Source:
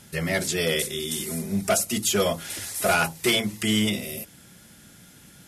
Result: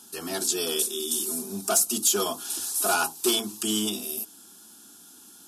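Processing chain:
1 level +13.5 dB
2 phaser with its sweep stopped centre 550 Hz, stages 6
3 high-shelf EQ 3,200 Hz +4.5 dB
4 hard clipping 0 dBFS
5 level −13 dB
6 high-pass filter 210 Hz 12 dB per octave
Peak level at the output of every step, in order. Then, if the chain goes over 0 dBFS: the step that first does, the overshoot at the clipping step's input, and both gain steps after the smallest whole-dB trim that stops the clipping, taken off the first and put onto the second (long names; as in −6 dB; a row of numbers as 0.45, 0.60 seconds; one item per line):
+1.5, +1.0, +5.0, 0.0, −13.0, −12.0 dBFS
step 1, 5.0 dB
step 1 +8.5 dB, step 5 −8 dB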